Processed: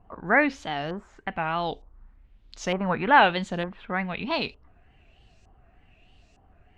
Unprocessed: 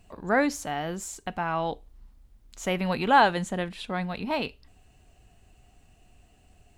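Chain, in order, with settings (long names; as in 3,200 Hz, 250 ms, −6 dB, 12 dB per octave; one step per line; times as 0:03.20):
pitch vibrato 3.3 Hz 97 cents
auto-filter low-pass saw up 1.1 Hz 990–5,900 Hz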